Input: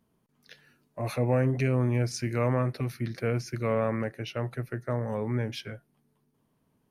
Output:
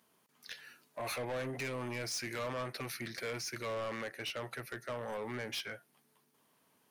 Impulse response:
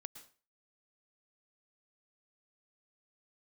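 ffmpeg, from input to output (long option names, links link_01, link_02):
-filter_complex "[0:a]highpass=frequency=1400:poles=1,asplit=2[link_01][link_02];[link_02]acompressor=threshold=-50dB:ratio=6,volume=2dB[link_03];[link_01][link_03]amix=inputs=2:normalize=0,asoftclip=type=tanh:threshold=-37dB,volume=3dB"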